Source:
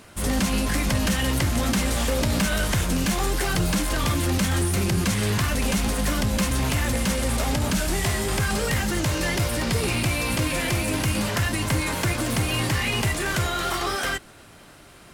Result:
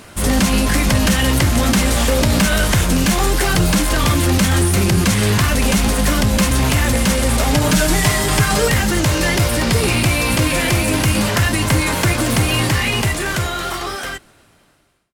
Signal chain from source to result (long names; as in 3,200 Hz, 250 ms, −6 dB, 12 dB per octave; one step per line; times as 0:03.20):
fade-out on the ending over 2.67 s
0:07.53–0:08.68: comb filter 6.6 ms, depth 68%
level +8 dB